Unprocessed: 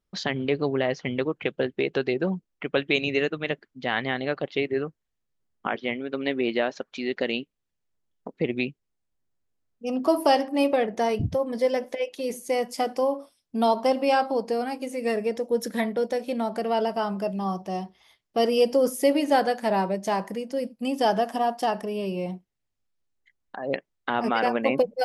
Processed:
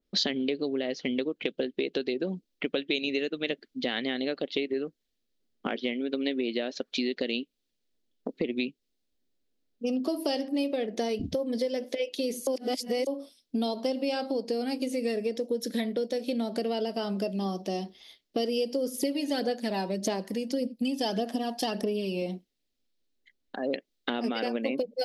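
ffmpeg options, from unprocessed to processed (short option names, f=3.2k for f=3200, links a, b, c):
-filter_complex "[0:a]asettb=1/sr,asplit=3[a][b][c];[a]atrim=end=18.944[d];[b]atrim=start=18.94:end=22.22,asetpts=PTS-STARTPTS,afade=t=in:d=0.004:c=qsin,afade=t=out:st=3.276:d=0.004:c=qsin,aphaser=in_gain=1:out_gain=1:delay=1.2:decay=0.45:speed=1.7:type=sinusoidal[e];[c]atrim=start=22.216[f];[d][e]acrossfade=d=0.004:c1=hsin:c2=qsin[g];[g][f]acrossfade=d=0.004:c1=qsin:c2=hsin,asplit=3[h][i][j];[h]atrim=end=12.472[k];[i]atrim=start=12.468:end=13.072,asetpts=PTS-STARTPTS,areverse[l];[j]atrim=start=13.068[m];[k][l]acrossfade=d=0.004:c1=hsin:c2=hsin[n];[n][m]acrossfade=d=0.004:c1=hsin:c2=hsin,equalizer=f=125:t=o:w=1:g=-12,equalizer=f=250:t=o:w=1:g=10,equalizer=f=500:t=o:w=1:g=5,equalizer=f=1k:t=o:w=1:g=-8,equalizer=f=4k:t=o:w=1:g=8,equalizer=f=8k:t=o:w=1:g=-3,acompressor=threshold=-27dB:ratio=6,adynamicequalizer=threshold=0.00316:dfrequency=2700:dqfactor=0.7:tfrequency=2700:tqfactor=0.7:attack=5:release=100:ratio=0.375:range=3:mode=boostabove:tftype=highshelf"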